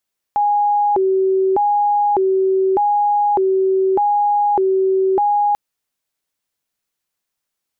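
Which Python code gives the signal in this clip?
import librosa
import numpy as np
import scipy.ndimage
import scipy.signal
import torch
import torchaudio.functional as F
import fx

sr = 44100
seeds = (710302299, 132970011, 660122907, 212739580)

y = fx.siren(sr, length_s=5.19, kind='hi-lo', low_hz=381.0, high_hz=825.0, per_s=0.83, wave='sine', level_db=-12.5)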